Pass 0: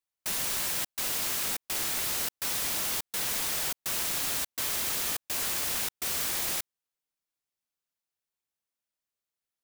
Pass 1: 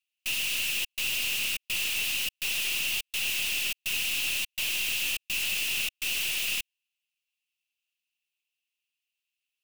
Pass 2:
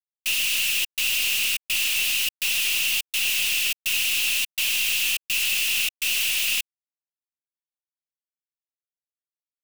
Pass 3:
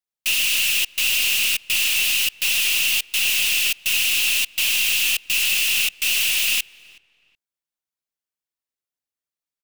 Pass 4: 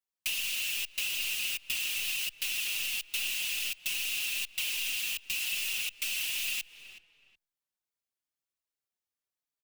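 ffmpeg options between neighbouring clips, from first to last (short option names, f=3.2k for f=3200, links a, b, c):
-af "highpass=f=2.7k:t=q:w=10,aeval=exprs='(tanh(15.8*val(0)+0.35)-tanh(0.35))/15.8':c=same"
-af "tiltshelf=f=1.2k:g=-4,acrusher=bits=8:mix=0:aa=0.5,volume=3dB"
-filter_complex "[0:a]asplit=2[a][b];[b]adelay=372,lowpass=f=2k:p=1,volume=-21dB,asplit=2[c][d];[d]adelay=372,lowpass=f=2k:p=1,volume=0.31[e];[a][c][e]amix=inputs=3:normalize=0,volume=3.5dB"
-filter_complex "[0:a]acompressor=threshold=-27dB:ratio=12,asplit=2[a][b];[b]adelay=4.6,afreqshift=-2.5[c];[a][c]amix=inputs=2:normalize=1"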